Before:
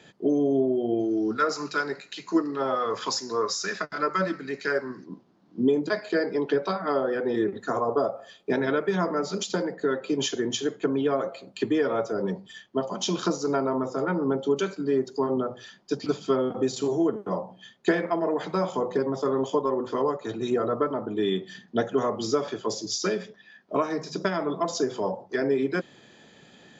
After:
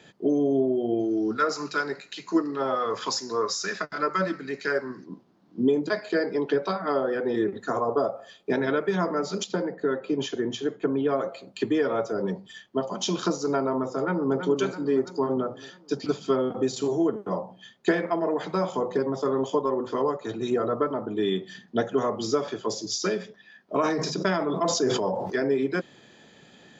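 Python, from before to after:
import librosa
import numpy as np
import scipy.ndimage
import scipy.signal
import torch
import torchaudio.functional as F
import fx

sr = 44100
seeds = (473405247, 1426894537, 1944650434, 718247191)

y = fx.lowpass(x, sr, hz=2100.0, slope=6, at=(9.44, 11.09))
y = fx.echo_throw(y, sr, start_s=13.98, length_s=0.41, ms=330, feedback_pct=55, wet_db=-7.5)
y = fx.sustainer(y, sr, db_per_s=34.0, at=(23.82, 25.43), fade=0.02)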